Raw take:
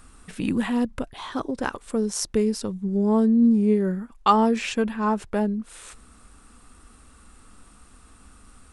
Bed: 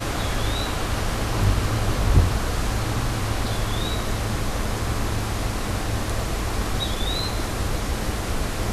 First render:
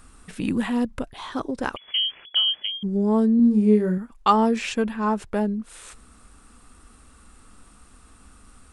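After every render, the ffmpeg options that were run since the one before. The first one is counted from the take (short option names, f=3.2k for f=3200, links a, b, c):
-filter_complex "[0:a]asettb=1/sr,asplit=3[a][b][c];[a]atrim=end=1.764[d];[b]atrim=start=1.76:end=2.83,asetpts=PTS-STARTPTS,afade=t=in:d=0.004:c=qsin,afade=t=out:st=1.066:d=0.004:c=qsin,lowpass=f=2.9k:t=q:w=0.5098,lowpass=f=2.9k:t=q:w=0.6013,lowpass=f=2.9k:t=q:w=0.9,lowpass=f=2.9k:t=q:w=2.563,afreqshift=-3400[e];[c]atrim=start=2.826[f];[d][e]acrossfade=d=0.004:c1=hsin:c2=qsin[g];[g][f]acrossfade=d=0.004:c1=qsin:c2=hsin,asettb=1/sr,asplit=3[h][i][j];[h]atrim=end=3.364[k];[i]atrim=start=3.36:end=3.98,asetpts=PTS-STARTPTS,afade=t=in:d=0.004:c=qsin,afade=t=out:st=0.616:d=0.004:c=qsin,asplit=2[l][m];[m]adelay=33,volume=-5dB[n];[l][n]amix=inputs=2:normalize=0,atrim=end_sample=27342[o];[j]atrim=start=3.976[p];[k][o]acrossfade=d=0.004:c1=hsin:c2=qsin[q];[q][p]acrossfade=d=0.004:c1=qsin:c2=hsin"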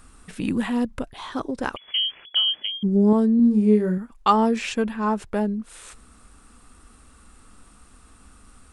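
-filter_complex "[0:a]asettb=1/sr,asplit=3[a][b][c];[a]atrim=end=2.534[d];[b]atrim=start=2.53:end=3.13,asetpts=PTS-STARTPTS,afade=t=in:d=0.004:c=qsin,afade=t=out:st=0.596:d=0.004:c=qsin,equalizer=f=270:t=o:w=1.5:g=6.5[e];[c]atrim=start=3.126[f];[d][e]acrossfade=d=0.004:c1=hsin:c2=qsin[g];[g][f]acrossfade=d=0.004:c1=qsin:c2=hsin"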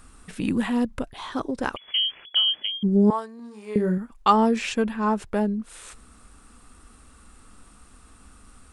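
-filter_complex "[0:a]asettb=1/sr,asplit=3[a][b][c];[a]atrim=end=3.104[d];[b]atrim=start=3.1:end=3.76,asetpts=PTS-STARTPTS,afade=t=in:d=0.004:c=qsin,afade=t=out:st=0.656:d=0.004:c=qsin,highpass=f=1k:t=q:w=1.8[e];[c]atrim=start=3.756[f];[d][e]acrossfade=d=0.004:c1=hsin:c2=qsin[g];[g][f]acrossfade=d=0.004:c1=qsin:c2=hsin"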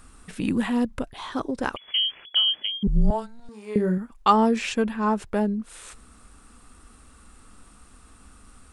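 -filter_complex "[0:a]asettb=1/sr,asplit=3[a][b][c];[a]atrim=end=2.874[d];[b]atrim=start=2.87:end=3.49,asetpts=PTS-STARTPTS,afade=t=in:d=0.004:c=qsin,afade=t=out:st=0.616:d=0.004:c=qsin,afreqshift=-230[e];[c]atrim=start=3.486[f];[d][e]acrossfade=d=0.004:c1=hsin:c2=qsin[g];[g][f]acrossfade=d=0.004:c1=qsin:c2=hsin"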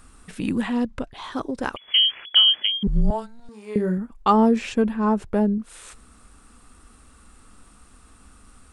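-filter_complex "[0:a]asettb=1/sr,asplit=3[a][b][c];[a]atrim=end=0.614[d];[b]atrim=start=0.61:end=1.24,asetpts=PTS-STARTPTS,afade=t=in:d=0.004:c=qsin,afade=t=out:st=0.626:d=0.004:c=qsin,lowpass=7.2k[e];[c]atrim=start=1.236[f];[d][e]acrossfade=d=0.004:c1=hsin:c2=qsin[g];[g][f]acrossfade=d=0.004:c1=qsin:c2=hsin,asettb=1/sr,asplit=3[h][i][j];[h]atrim=end=1.914[k];[i]atrim=start=1.91:end=3.01,asetpts=PTS-STARTPTS,afade=t=in:d=0.004:c=qsin,afade=t=out:st=1.096:d=0.004:c=qsin,equalizer=f=1.8k:w=0.5:g=8[l];[j]atrim=start=3.006[m];[k][l]acrossfade=d=0.004:c1=hsin:c2=qsin[n];[n][m]acrossfade=d=0.004:c1=qsin:c2=hsin,asettb=1/sr,asplit=3[o][p][q];[o]atrim=end=3.984[r];[p]atrim=start=3.98:end=5.58,asetpts=PTS-STARTPTS,afade=t=in:d=0.004:c=qsin,afade=t=out:st=1.596:d=0.004:c=qsin,tiltshelf=f=920:g=4.5[s];[q]atrim=start=5.576[t];[r][s]acrossfade=d=0.004:c1=hsin:c2=qsin[u];[u][t]acrossfade=d=0.004:c1=qsin:c2=hsin"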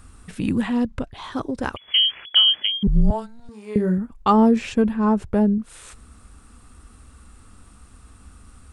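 -af "equalizer=f=81:w=0.71:g=9"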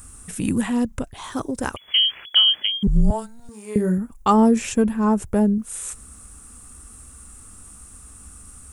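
-af "aexciter=amount=5.2:drive=5.6:freq=6.1k"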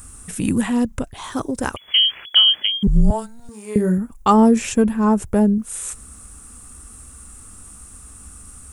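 -af "volume=2.5dB"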